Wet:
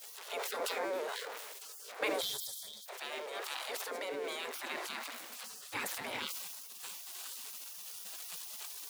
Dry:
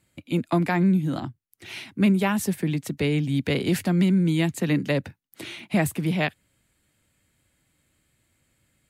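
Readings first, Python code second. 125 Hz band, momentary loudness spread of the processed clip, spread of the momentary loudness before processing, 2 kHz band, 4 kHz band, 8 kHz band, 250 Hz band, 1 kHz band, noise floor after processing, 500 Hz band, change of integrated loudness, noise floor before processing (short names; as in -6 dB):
under -40 dB, 9 LU, 15 LU, -9.0 dB, -4.0 dB, -2.5 dB, -29.0 dB, -8.5 dB, -50 dBFS, -10.5 dB, -15.5 dB, -71 dBFS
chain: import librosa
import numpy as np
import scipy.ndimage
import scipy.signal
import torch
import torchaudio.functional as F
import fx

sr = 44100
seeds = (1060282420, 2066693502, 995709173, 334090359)

y = x + 0.5 * 10.0 ** (-32.0 / 20.0) * np.sign(x)
y = fx.high_shelf(y, sr, hz=3600.0, db=-7.5)
y = fx.echo_thinned(y, sr, ms=1088, feedback_pct=18, hz=290.0, wet_db=-14)
y = fx.dynamic_eq(y, sr, hz=2700.0, q=2.5, threshold_db=-49.0, ratio=4.0, max_db=-6)
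y = y + 10.0 ** (-19.0 / 20.0) * np.pad(y, (int(80 * sr / 1000.0), 0))[:len(y)]
y = fx.spec_gate(y, sr, threshold_db=-25, keep='weak')
y = scipy.signal.sosfilt(scipy.signal.butter(2, 89.0, 'highpass', fs=sr, output='sos'), y)
y = fx.rider(y, sr, range_db=10, speed_s=2.0)
y = fx.spec_box(y, sr, start_s=2.21, length_s=0.65, low_hz=230.0, high_hz=3100.0, gain_db=-26)
y = fx.filter_sweep_highpass(y, sr, from_hz=450.0, to_hz=170.0, start_s=4.04, end_s=5.66, q=3.1)
y = fx.sustainer(y, sr, db_per_s=26.0)
y = y * 10.0 ** (-1.0 / 20.0)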